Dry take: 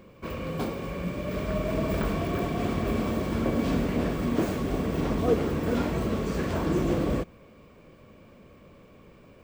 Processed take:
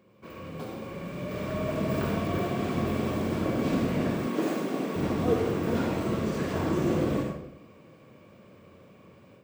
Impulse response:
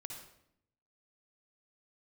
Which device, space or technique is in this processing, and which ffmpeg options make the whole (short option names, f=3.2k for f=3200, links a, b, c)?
far laptop microphone: -filter_complex "[1:a]atrim=start_sample=2205[a];[0:a][a]afir=irnorm=-1:irlink=0,highpass=110,dynaudnorm=f=720:g=3:m=7dB,asettb=1/sr,asplit=3[b][c][d];[b]atrim=end=4.274[e];[c]atrim=start=4.27:end=4.96,asetpts=PTS-STARTPTS,afade=t=in:d=0.004:c=qsin,afade=t=out:st=0.686:d=0.004:c=qsin,highpass=f=190:w=0.5412,highpass=f=190:w=1.3066[f];[d]atrim=start=4.956[g];[e][f]acrossfade=d=0.004:c1=hsin:c2=qsin[h];[h][g]acrossfade=d=0.004:c1=qsin:c2=hsin,volume=-4dB"